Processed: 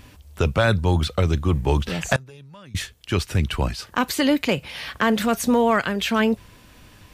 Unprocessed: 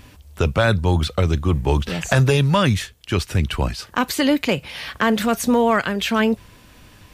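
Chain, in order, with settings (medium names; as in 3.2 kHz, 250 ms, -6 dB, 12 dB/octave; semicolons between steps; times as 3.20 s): 2.16–2.75 s: gate -4 dBFS, range -26 dB; trim -1.5 dB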